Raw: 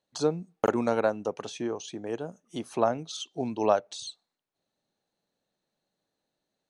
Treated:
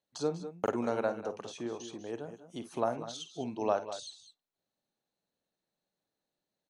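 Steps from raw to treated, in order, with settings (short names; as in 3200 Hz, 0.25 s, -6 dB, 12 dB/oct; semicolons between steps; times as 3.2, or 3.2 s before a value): tapped delay 50/62/187/204 ms -12.5/-19.5/-17.5/-13 dB; gain -6.5 dB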